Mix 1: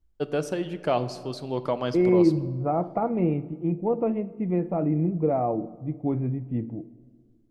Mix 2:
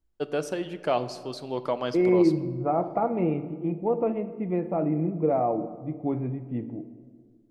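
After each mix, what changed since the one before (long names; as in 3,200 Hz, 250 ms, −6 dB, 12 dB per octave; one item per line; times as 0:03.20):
second voice: send +7.5 dB
master: add low-shelf EQ 160 Hz −11 dB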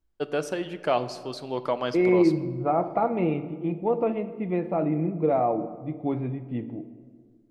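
second voice: add parametric band 4,000 Hz +11.5 dB 0.94 octaves
master: add parametric band 1,700 Hz +3 dB 2.2 octaves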